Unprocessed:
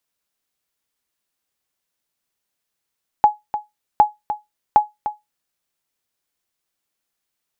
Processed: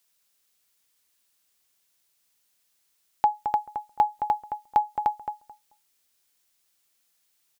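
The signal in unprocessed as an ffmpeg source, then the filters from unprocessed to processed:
-f lavfi -i "aevalsrc='0.708*(sin(2*PI*841*mod(t,0.76))*exp(-6.91*mod(t,0.76)/0.18)+0.266*sin(2*PI*841*max(mod(t,0.76)-0.3,0))*exp(-6.91*max(mod(t,0.76)-0.3,0)/0.18))':d=2.28:s=44100"
-filter_complex "[0:a]alimiter=limit=0.251:level=0:latency=1:release=167,highshelf=f=2100:g=10,asplit=2[s0][s1];[s1]adelay=218,lowpass=f=1500:p=1,volume=0.447,asplit=2[s2][s3];[s3]adelay=218,lowpass=f=1500:p=1,volume=0.18,asplit=2[s4][s5];[s5]adelay=218,lowpass=f=1500:p=1,volume=0.18[s6];[s2][s4][s6]amix=inputs=3:normalize=0[s7];[s0][s7]amix=inputs=2:normalize=0"

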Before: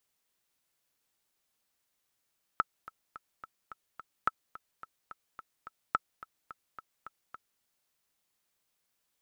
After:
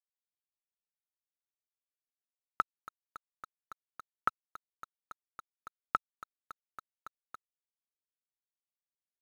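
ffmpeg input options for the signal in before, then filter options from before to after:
-f lavfi -i "aevalsrc='pow(10,(-12.5-18.5*gte(mod(t,6*60/215),60/215))/20)*sin(2*PI*1310*mod(t,60/215))*exp(-6.91*mod(t,60/215)/0.03)':d=5.02:s=44100"
-af "bandreject=f=46.55:t=h:w=4,bandreject=f=93.1:t=h:w=4,acrusher=bits=7:mix=0:aa=0.5,aresample=32000,aresample=44100"

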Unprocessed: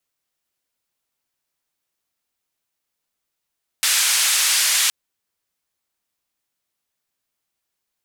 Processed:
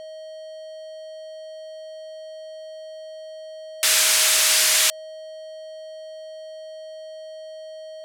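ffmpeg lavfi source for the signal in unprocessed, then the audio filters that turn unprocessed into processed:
-f lavfi -i "anoisesrc=c=white:d=1.07:r=44100:seed=1,highpass=f=1600,lowpass=f=10000,volume=-9dB"
-filter_complex "[0:a]acrossover=split=420[s0][s1];[s0]dynaudnorm=f=330:g=9:m=3.55[s2];[s2][s1]amix=inputs=2:normalize=0,aeval=exprs='val(0)+0.0178*sin(2*PI*630*n/s)':c=same,acrusher=bits=6:mix=0:aa=0.5"

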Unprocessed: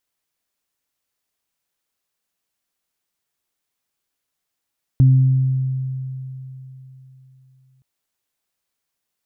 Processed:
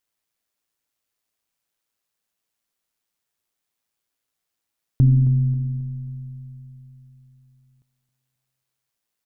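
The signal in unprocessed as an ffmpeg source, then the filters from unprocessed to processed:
-f lavfi -i "aevalsrc='0.422*pow(10,-3*t/3.57)*sin(2*PI*131*t)+0.075*pow(10,-3*t/1.43)*sin(2*PI*262*t)':d=2.82:s=44100"
-af "tremolo=f=110:d=0.4,aecho=1:1:269|538|807|1076:0.188|0.0791|0.0332|0.014"

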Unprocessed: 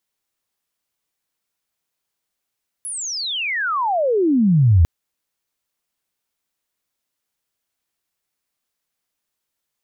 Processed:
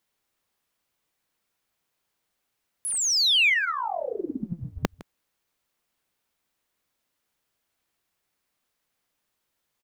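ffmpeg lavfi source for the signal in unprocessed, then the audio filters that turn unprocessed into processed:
-f lavfi -i "aevalsrc='pow(10,(-25.5+17*t/2)/20)*sin(2*PI*11000*2/log(77/11000)*(exp(log(77/11000)*t/2)-1))':d=2:s=44100"
-filter_complex "[0:a]afftfilt=real='re*lt(hypot(re,im),0.891)':imag='im*lt(hypot(re,im),0.891)':win_size=1024:overlap=0.75,asplit=2[s0][s1];[s1]adynamicsmooth=sensitivity=5.5:basefreq=4800,volume=0.708[s2];[s0][s2]amix=inputs=2:normalize=0,aecho=1:1:159:0.106"

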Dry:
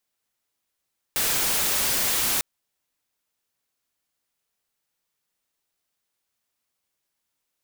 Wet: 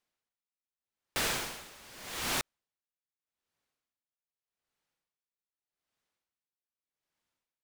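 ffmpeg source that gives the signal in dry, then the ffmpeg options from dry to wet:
-f lavfi -i "anoisesrc=c=white:a=0.116:d=1.25:r=44100:seed=1"
-af "aemphasis=mode=reproduction:type=50kf,aeval=exprs='val(0)*pow(10,-23*(0.5-0.5*cos(2*PI*0.83*n/s))/20)':c=same"

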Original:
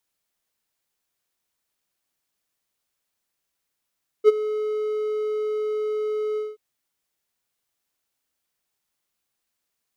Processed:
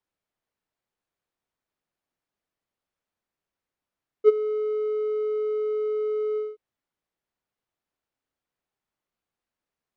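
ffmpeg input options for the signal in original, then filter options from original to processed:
-f lavfi -i "aevalsrc='0.531*(1-4*abs(mod(427*t+0.25,1)-0.5))':d=2.327:s=44100,afade=t=in:d=0.044,afade=t=out:st=0.044:d=0.024:silence=0.168,afade=t=out:st=2.13:d=0.197"
-af "lowpass=f=1200:p=1"

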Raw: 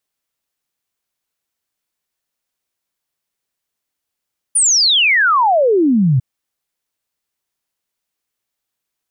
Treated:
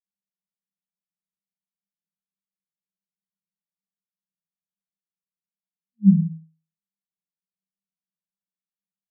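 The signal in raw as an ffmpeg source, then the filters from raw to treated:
-f lavfi -i "aevalsrc='0.335*clip(min(t,1.65-t)/0.01,0,1)*sin(2*PI*9800*1.65/log(120/9800)*(exp(log(120/9800)*t/1.65)-1))':d=1.65:s=44100"
-filter_complex "[0:a]asuperpass=centerf=180:order=20:qfactor=4.2,asplit=2[s0][s1];[s1]aecho=0:1:20|46|79.8|123.7|180.9:0.631|0.398|0.251|0.158|0.1[s2];[s0][s2]amix=inputs=2:normalize=0"

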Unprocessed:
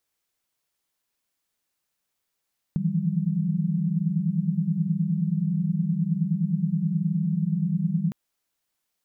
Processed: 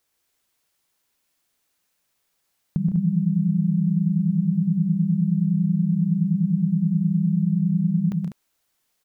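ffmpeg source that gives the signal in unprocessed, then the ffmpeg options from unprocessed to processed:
-f lavfi -i "aevalsrc='0.0422*(sin(2*PI*155.56*t)+sin(2*PI*164.81*t)+sin(2*PI*174.61*t)+sin(2*PI*196*t))':d=5.36:s=44100"
-filter_complex "[0:a]asplit=2[s0][s1];[s1]alimiter=limit=0.0708:level=0:latency=1:release=196,volume=0.891[s2];[s0][s2]amix=inputs=2:normalize=0,aecho=1:1:125.4|157.4|198.3:0.447|0.282|0.398"

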